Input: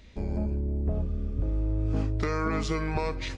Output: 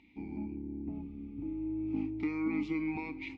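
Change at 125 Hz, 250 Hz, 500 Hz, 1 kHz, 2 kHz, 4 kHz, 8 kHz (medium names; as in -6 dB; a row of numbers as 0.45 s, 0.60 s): -17.5 dB, -0.5 dB, -11.0 dB, -13.5 dB, -6.0 dB, under -10 dB, no reading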